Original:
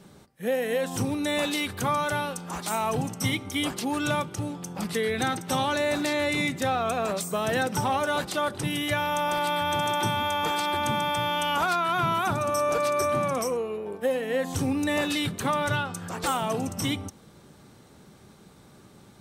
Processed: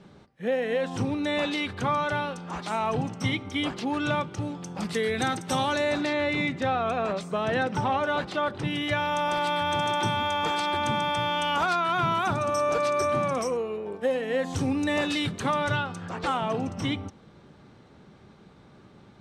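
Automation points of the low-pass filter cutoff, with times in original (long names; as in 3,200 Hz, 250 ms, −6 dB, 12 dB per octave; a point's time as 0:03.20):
0:04.18 4,000 Hz
0:05.12 8,800 Hz
0:05.70 8,800 Hz
0:06.14 3,400 Hz
0:08.57 3,400 Hz
0:09.26 6,400 Hz
0:15.59 6,400 Hz
0:16.20 3,600 Hz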